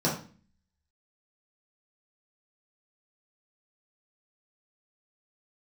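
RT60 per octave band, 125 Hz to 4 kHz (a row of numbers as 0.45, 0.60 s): 0.60, 0.65, 0.40, 0.40, 0.40, 0.35 s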